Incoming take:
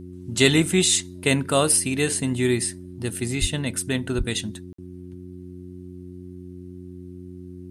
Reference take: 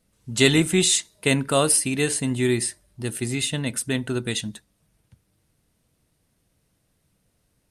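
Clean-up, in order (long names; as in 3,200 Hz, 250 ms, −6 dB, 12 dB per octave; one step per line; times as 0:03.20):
hum removal 90.2 Hz, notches 4
high-pass at the plosives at 0:03.40/0:04.17
repair the gap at 0:04.73, 54 ms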